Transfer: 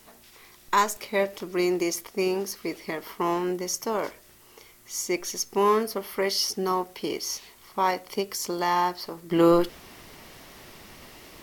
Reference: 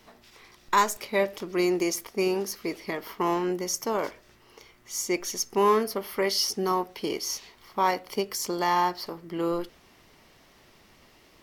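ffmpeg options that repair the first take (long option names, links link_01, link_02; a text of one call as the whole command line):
ffmpeg -i in.wav -af "agate=range=-21dB:threshold=-45dB,asetnsamples=nb_out_samples=441:pad=0,asendcmd='9.31 volume volume -9.5dB',volume=0dB" out.wav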